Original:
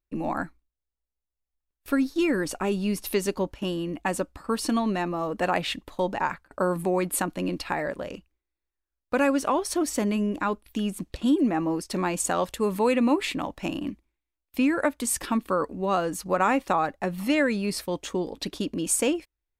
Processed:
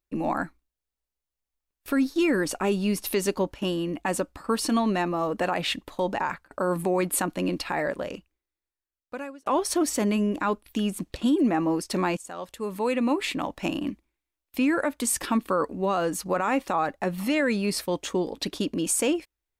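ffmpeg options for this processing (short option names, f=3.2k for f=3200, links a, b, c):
-filter_complex "[0:a]asplit=3[a][b][c];[a]atrim=end=9.46,asetpts=PTS-STARTPTS,afade=t=out:st=8.06:d=1.4[d];[b]atrim=start=9.46:end=12.17,asetpts=PTS-STARTPTS,afade=t=in:d=0.004:c=hsin,afade=t=out:st=2.706:d=0.004:c=hsin:silence=0.0891251[e];[c]atrim=start=12.17,asetpts=PTS-STARTPTS,afade=t=in:d=1.46:silence=0.0891251[f];[d][e][f]concat=n=3:v=0:a=1,lowshelf=f=110:g=-6,alimiter=limit=-18dB:level=0:latency=1:release=29,volume=2.5dB"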